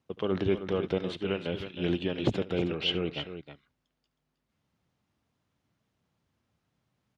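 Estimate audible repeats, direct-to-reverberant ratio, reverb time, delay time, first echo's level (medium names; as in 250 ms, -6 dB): 2, no reverb, no reverb, 72 ms, -18.5 dB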